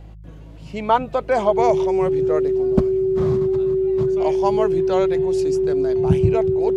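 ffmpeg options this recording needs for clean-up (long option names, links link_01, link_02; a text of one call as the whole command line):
ffmpeg -i in.wav -af "bandreject=frequency=52.6:width_type=h:width=4,bandreject=frequency=105.2:width_type=h:width=4,bandreject=frequency=157.8:width_type=h:width=4,bandreject=frequency=380:width=30" out.wav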